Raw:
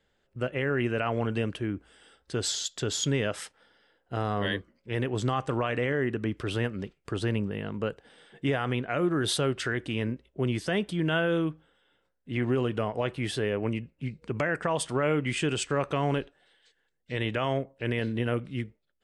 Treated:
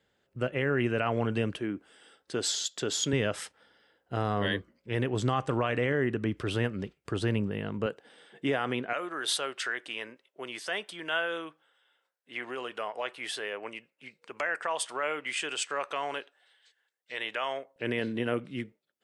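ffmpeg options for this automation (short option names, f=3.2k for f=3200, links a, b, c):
-af "asetnsamples=n=441:p=0,asendcmd='1.57 highpass f 200;3.13 highpass f 61;7.86 highpass f 210;8.93 highpass f 730;17.76 highpass f 190',highpass=78"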